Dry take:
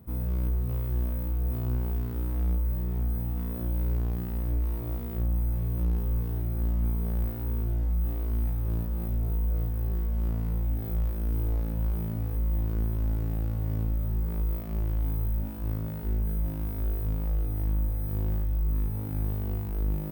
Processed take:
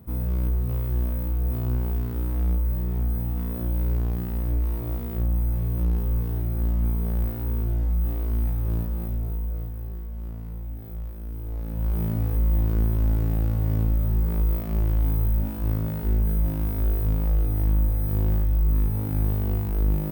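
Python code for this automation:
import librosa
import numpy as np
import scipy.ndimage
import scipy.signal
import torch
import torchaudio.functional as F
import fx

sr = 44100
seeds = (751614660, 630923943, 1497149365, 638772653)

y = fx.gain(x, sr, db=fx.line((8.8, 3.5), (10.04, -6.0), (11.42, -6.0), (12.03, 6.0)))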